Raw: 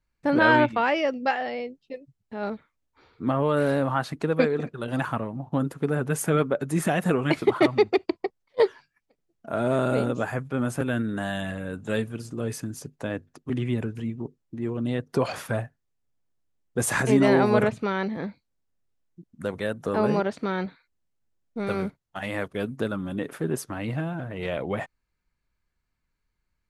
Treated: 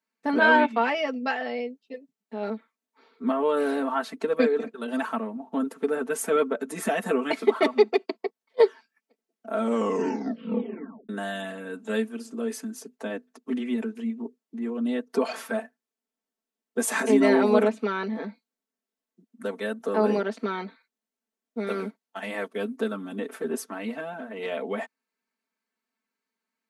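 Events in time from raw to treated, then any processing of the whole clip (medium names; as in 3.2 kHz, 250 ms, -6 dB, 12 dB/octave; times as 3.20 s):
9.55 s: tape stop 1.54 s
whole clip: elliptic high-pass 220 Hz, stop band 50 dB; comb 4.5 ms, depth 83%; trim -2.5 dB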